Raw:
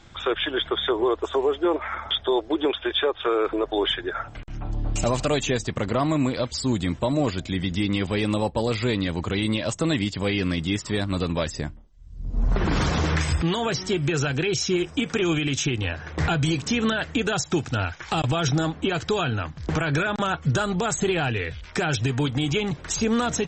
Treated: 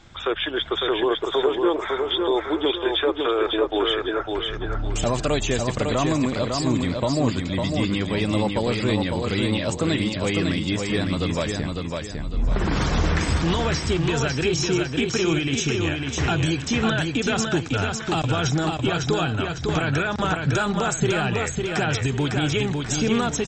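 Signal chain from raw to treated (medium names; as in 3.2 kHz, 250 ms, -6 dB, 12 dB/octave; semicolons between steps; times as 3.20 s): feedback delay 553 ms, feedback 37%, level -4 dB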